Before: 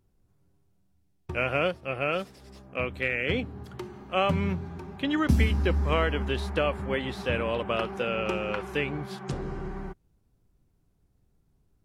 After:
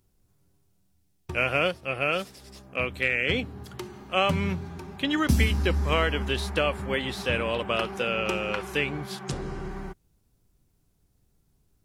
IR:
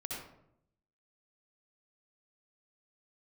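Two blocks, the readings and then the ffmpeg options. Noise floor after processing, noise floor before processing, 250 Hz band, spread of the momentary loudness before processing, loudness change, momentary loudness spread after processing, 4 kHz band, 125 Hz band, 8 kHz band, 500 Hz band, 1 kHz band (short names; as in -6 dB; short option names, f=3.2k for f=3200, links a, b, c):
-69 dBFS, -69 dBFS, 0.0 dB, 13 LU, +1.5 dB, 14 LU, +5.5 dB, 0.0 dB, +8.5 dB, +0.5 dB, +1.0 dB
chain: -af "highshelf=f=2.9k:g=10"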